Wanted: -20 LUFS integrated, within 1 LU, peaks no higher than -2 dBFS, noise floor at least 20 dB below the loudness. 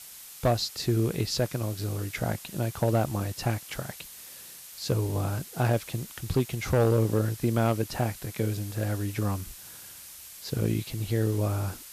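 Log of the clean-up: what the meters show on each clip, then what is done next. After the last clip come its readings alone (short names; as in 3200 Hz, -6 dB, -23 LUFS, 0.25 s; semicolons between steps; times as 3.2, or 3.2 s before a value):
clipped 0.5%; flat tops at -17.0 dBFS; noise floor -46 dBFS; noise floor target -49 dBFS; loudness -29.0 LUFS; peak -17.0 dBFS; loudness target -20.0 LUFS
-> clip repair -17 dBFS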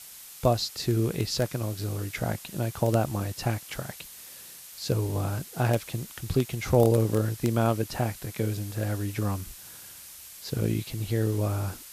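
clipped 0.0%; noise floor -46 dBFS; noise floor target -49 dBFS
-> denoiser 6 dB, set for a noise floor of -46 dBFS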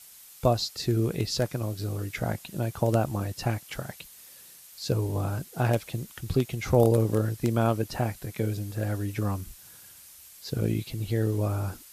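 noise floor -50 dBFS; loudness -28.5 LUFS; peak -8.0 dBFS; loudness target -20.0 LUFS
-> gain +8.5 dB; limiter -2 dBFS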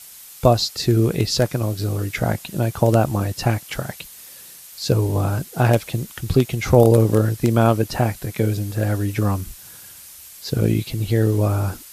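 loudness -20.0 LUFS; peak -2.0 dBFS; noise floor -42 dBFS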